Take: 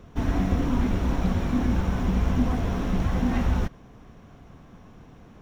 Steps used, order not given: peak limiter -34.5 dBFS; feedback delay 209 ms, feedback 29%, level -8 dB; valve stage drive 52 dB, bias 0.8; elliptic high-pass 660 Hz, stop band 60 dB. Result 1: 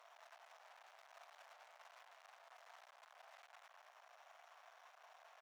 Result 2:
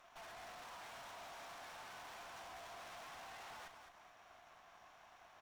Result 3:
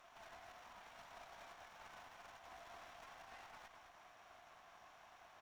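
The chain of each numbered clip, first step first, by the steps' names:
peak limiter > feedback delay > valve stage > elliptic high-pass; elliptic high-pass > peak limiter > valve stage > feedback delay; peak limiter > elliptic high-pass > valve stage > feedback delay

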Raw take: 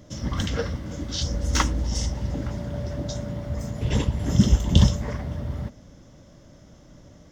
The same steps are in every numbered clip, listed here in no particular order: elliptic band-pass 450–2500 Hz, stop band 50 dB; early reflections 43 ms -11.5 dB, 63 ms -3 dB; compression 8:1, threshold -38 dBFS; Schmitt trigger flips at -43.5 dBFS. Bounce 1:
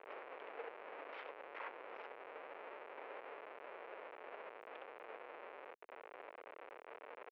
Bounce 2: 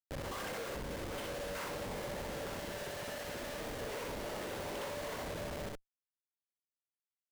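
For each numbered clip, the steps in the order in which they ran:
early reflections > compression > Schmitt trigger > elliptic band-pass; elliptic band-pass > Schmitt trigger > early reflections > compression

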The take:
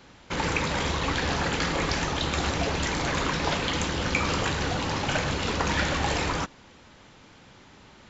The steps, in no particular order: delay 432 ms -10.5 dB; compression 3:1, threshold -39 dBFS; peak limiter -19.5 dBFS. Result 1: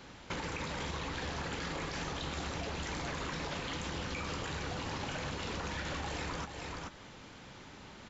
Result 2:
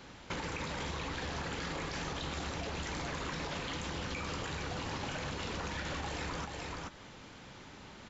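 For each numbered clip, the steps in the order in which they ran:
peak limiter > delay > compression; delay > peak limiter > compression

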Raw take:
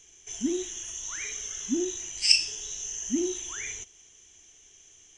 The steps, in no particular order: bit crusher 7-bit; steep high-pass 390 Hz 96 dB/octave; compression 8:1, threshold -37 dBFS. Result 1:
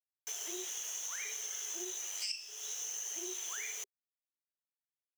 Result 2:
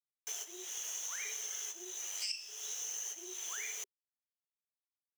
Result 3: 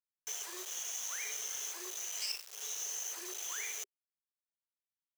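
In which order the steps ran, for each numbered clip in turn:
bit crusher > steep high-pass > compression; bit crusher > compression > steep high-pass; compression > bit crusher > steep high-pass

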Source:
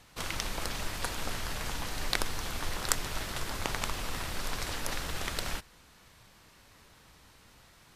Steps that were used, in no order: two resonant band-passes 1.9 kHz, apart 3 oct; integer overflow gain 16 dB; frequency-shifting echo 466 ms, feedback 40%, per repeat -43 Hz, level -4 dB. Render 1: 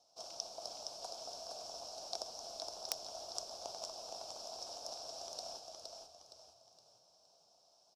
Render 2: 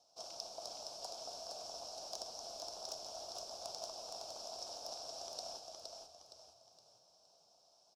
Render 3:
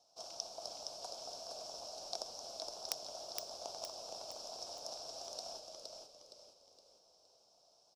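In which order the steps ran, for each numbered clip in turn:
frequency-shifting echo > two resonant band-passes > integer overflow; integer overflow > frequency-shifting echo > two resonant band-passes; two resonant band-passes > integer overflow > frequency-shifting echo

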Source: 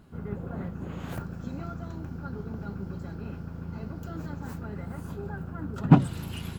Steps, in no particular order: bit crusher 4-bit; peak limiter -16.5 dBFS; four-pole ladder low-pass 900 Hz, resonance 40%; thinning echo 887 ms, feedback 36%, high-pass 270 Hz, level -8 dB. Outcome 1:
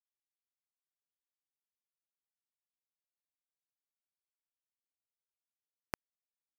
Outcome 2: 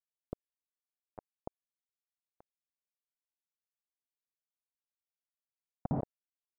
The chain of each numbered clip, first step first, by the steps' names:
peak limiter > four-pole ladder low-pass > bit crusher > thinning echo; thinning echo > bit crusher > peak limiter > four-pole ladder low-pass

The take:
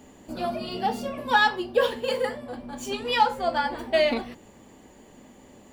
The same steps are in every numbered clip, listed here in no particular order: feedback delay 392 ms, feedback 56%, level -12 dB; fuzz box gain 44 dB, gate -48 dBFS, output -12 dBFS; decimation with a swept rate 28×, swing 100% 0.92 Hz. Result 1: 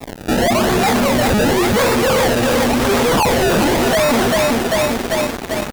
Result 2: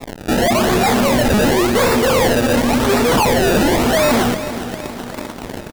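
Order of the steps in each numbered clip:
decimation with a swept rate > feedback delay > fuzz box; fuzz box > decimation with a swept rate > feedback delay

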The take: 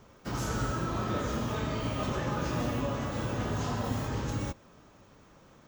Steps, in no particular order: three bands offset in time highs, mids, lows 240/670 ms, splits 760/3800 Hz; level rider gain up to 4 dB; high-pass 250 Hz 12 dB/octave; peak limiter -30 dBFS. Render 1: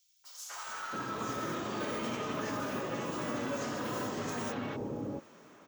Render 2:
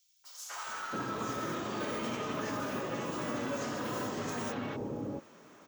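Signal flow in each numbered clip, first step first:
high-pass > peak limiter > level rider > three bands offset in time; high-pass > peak limiter > three bands offset in time > level rider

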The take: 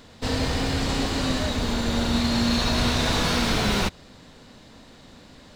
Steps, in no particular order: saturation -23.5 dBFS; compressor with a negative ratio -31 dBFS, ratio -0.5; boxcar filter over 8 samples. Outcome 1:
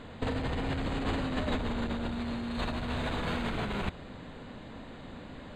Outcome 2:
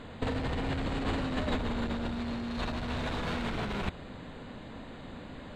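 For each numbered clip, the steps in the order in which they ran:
saturation > boxcar filter > compressor with a negative ratio; boxcar filter > saturation > compressor with a negative ratio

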